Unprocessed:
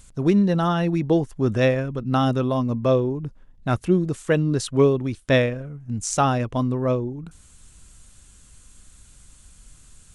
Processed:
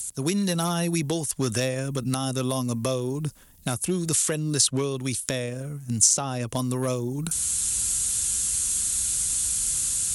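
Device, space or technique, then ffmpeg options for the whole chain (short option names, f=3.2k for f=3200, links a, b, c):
FM broadcast chain: -filter_complex "[0:a]highpass=52,dynaudnorm=f=260:g=3:m=14.5dB,acrossover=split=96|1000|6100[a][b][c][d];[a]acompressor=threshold=-35dB:ratio=4[e];[b]acompressor=threshold=-21dB:ratio=4[f];[c]acompressor=threshold=-36dB:ratio=4[g];[d]acompressor=threshold=-53dB:ratio=4[h];[e][f][g][h]amix=inputs=4:normalize=0,aemphasis=mode=production:type=75fm,alimiter=limit=-12dB:level=0:latency=1:release=363,asoftclip=type=hard:threshold=-14dB,lowpass=f=15k:w=0.5412,lowpass=f=15k:w=1.3066,aemphasis=mode=production:type=75fm,volume=-2dB"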